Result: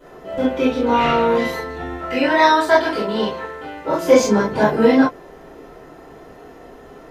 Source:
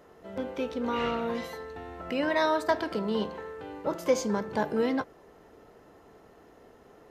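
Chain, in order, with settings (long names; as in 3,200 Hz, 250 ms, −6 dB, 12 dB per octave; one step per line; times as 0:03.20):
0:01.92–0:04.00: low-shelf EQ 490 Hz −7 dB
convolution reverb, pre-delay 4 ms, DRR −15.5 dB
level −5.5 dB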